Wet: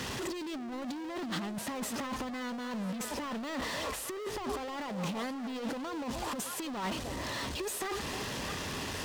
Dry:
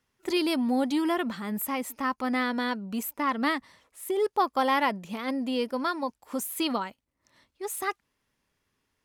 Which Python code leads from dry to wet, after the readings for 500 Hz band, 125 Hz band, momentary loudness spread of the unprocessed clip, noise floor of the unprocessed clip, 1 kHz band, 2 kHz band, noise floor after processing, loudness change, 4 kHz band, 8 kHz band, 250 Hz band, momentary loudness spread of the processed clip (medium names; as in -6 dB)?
-7.5 dB, +5.5 dB, 8 LU, -79 dBFS, -9.0 dB, -6.5 dB, -40 dBFS, -8.0 dB, -3.0 dB, 0.0 dB, -7.5 dB, 2 LU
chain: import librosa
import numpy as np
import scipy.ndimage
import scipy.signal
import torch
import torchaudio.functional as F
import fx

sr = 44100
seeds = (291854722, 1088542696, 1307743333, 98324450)

y = x + 0.5 * 10.0 ** (-31.0 / 20.0) * np.sign(x)
y = scipy.signal.sosfilt(scipy.signal.butter(2, 40.0, 'highpass', fs=sr, output='sos'), y)
y = fx.peak_eq(y, sr, hz=1400.0, db=-5.0, octaves=0.42)
y = fx.notch(y, sr, hz=2200.0, q=9.7)
y = y + 10.0 ** (-21.0 / 20.0) * np.pad(y, (int(105 * sr / 1000.0), 0))[:len(y)]
y = 10.0 ** (-31.0 / 20.0) * np.tanh(y / 10.0 ** (-31.0 / 20.0))
y = np.repeat(scipy.signal.resample_poly(y, 1, 2), 2)[:len(y)]
y = fx.high_shelf(y, sr, hz=11000.0, db=-9.5)
y = fx.echo_stepped(y, sr, ms=309, hz=520.0, octaves=1.4, feedback_pct=70, wet_db=-6.5)
y = fx.over_compress(y, sr, threshold_db=-35.0, ratio=-0.5)
y = fx.hum_notches(y, sr, base_hz=50, count=2)
y = fx.doppler_dist(y, sr, depth_ms=0.15)